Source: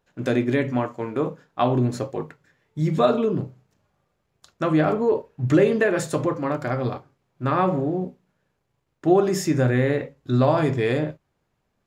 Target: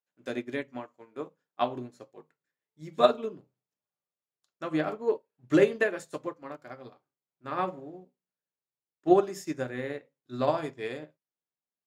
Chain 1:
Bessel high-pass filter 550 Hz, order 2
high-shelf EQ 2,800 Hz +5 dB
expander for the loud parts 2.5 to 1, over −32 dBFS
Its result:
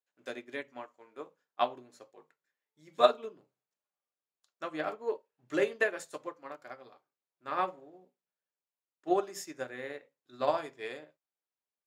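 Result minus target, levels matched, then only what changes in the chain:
250 Hz band −6.0 dB
change: Bessel high-pass filter 240 Hz, order 2

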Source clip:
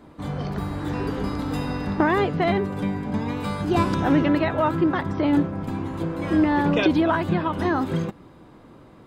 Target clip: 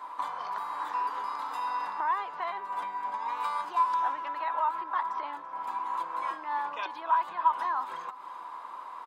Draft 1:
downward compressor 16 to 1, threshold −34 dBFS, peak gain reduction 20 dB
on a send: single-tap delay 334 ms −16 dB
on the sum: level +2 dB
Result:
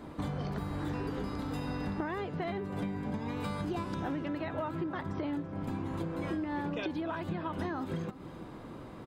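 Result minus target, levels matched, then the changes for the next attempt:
1,000 Hz band −9.0 dB
add after downward compressor: high-pass with resonance 1,000 Hz, resonance Q 8.7

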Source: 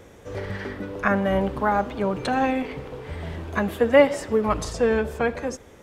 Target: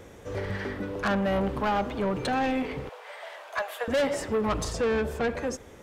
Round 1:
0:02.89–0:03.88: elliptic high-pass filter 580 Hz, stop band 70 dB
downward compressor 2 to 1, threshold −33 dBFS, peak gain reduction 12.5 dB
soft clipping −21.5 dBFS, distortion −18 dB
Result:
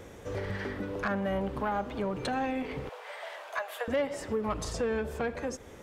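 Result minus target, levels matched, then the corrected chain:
downward compressor: peak gain reduction +12.5 dB
0:02.89–0:03.88: elliptic high-pass filter 580 Hz, stop band 70 dB
soft clipping −21.5 dBFS, distortion −7 dB

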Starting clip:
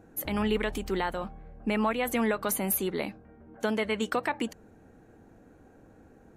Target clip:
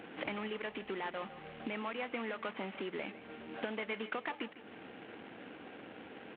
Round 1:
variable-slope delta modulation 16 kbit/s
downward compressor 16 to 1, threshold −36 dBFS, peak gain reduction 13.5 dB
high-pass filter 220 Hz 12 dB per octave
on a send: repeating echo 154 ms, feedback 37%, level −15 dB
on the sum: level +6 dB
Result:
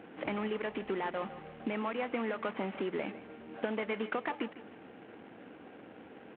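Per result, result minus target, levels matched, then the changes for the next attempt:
4,000 Hz band −6.5 dB; downward compressor: peak gain reduction −6 dB
add after high-pass filter: high-shelf EQ 2,000 Hz +10 dB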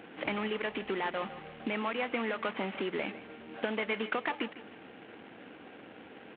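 downward compressor: peak gain reduction −6 dB
change: downward compressor 16 to 1, threshold −42.5 dBFS, peak gain reduction 19.5 dB

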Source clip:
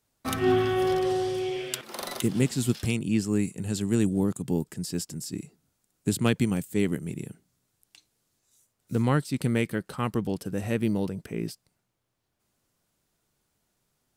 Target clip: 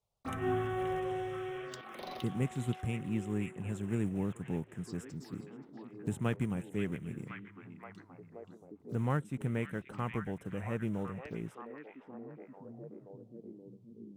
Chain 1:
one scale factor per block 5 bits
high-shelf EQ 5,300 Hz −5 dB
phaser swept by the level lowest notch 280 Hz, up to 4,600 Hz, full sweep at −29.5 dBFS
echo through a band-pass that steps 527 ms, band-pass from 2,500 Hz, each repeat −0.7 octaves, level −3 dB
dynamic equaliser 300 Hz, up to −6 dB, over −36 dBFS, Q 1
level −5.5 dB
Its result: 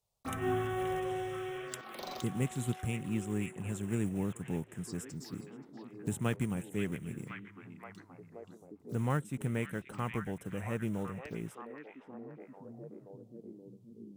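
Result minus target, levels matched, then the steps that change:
8,000 Hz band +7.5 dB
change: high-shelf EQ 5,300 Hz −16 dB

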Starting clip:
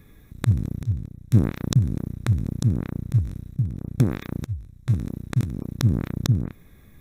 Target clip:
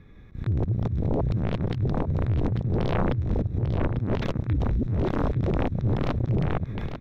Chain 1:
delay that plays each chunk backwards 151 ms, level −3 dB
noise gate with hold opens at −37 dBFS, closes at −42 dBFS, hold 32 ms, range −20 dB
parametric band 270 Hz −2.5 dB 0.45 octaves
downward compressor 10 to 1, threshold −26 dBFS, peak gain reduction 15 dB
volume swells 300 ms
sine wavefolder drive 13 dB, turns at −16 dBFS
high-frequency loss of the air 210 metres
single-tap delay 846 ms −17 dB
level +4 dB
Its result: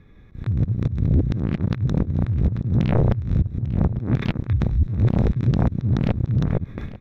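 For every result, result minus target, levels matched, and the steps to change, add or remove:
sine wavefolder: distortion −11 dB; echo-to-direct −8.5 dB
change: sine wavefolder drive 13 dB, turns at −24 dBFS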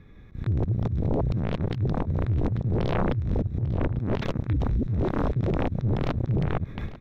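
echo-to-direct −8.5 dB
change: single-tap delay 846 ms −8.5 dB

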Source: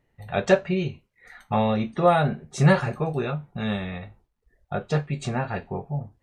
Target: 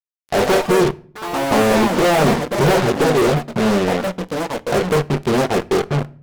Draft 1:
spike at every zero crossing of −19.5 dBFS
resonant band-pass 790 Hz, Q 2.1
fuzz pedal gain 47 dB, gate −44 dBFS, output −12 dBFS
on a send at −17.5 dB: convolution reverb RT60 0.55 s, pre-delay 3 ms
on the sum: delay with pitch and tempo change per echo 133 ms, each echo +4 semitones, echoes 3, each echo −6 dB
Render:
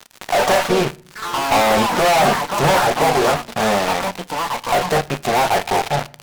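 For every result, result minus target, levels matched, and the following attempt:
1,000 Hz band +4.5 dB; spike at every zero crossing: distortion +7 dB
spike at every zero crossing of −19.5 dBFS
resonant band-pass 380 Hz, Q 2.1
fuzz pedal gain 47 dB, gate −44 dBFS, output −12 dBFS
on a send at −17.5 dB: convolution reverb RT60 0.55 s, pre-delay 3 ms
on the sum: delay with pitch and tempo change per echo 133 ms, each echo +4 semitones, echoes 3, each echo −6 dB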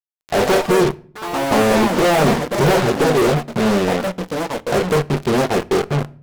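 spike at every zero crossing: distortion +7 dB
spike at every zero crossing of −26.5 dBFS
resonant band-pass 380 Hz, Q 2.1
fuzz pedal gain 47 dB, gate −44 dBFS, output −12 dBFS
on a send at −17.5 dB: convolution reverb RT60 0.55 s, pre-delay 3 ms
on the sum: delay with pitch and tempo change per echo 133 ms, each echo +4 semitones, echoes 3, each echo −6 dB

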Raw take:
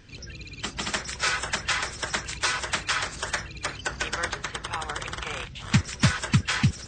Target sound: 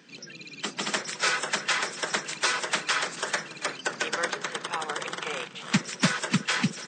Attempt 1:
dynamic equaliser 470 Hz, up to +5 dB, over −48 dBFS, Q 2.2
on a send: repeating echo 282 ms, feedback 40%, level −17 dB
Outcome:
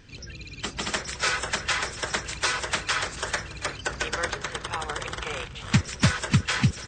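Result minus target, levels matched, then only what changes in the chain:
125 Hz band +8.0 dB
add after dynamic equaliser: Butterworth high-pass 160 Hz 48 dB per octave

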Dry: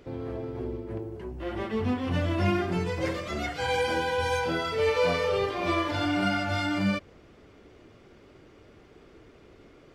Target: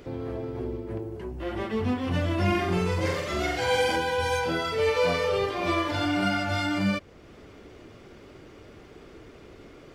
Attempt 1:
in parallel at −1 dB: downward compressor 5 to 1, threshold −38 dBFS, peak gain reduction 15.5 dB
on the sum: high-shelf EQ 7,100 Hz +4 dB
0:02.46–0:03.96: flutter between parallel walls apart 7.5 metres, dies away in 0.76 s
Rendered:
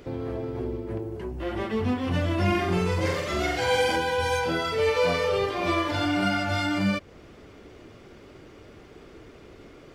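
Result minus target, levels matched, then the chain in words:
downward compressor: peak gain reduction −7 dB
in parallel at −1 dB: downward compressor 5 to 1, threshold −47 dBFS, peak gain reduction 23 dB
on the sum: high-shelf EQ 7,100 Hz +4 dB
0:02.46–0:03.96: flutter between parallel walls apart 7.5 metres, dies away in 0.76 s

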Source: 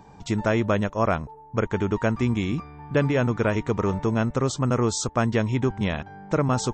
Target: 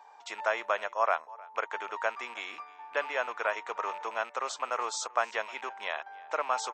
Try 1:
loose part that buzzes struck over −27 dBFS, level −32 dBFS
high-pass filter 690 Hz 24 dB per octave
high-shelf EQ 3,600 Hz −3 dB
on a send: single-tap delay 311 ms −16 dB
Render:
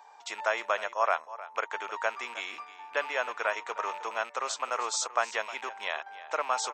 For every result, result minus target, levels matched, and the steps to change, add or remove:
echo-to-direct +7 dB; 8,000 Hz band +4.0 dB
change: single-tap delay 311 ms −23 dB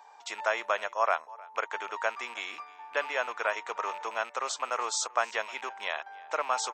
8,000 Hz band +4.0 dB
change: high-shelf EQ 3,600 Hz −9.5 dB

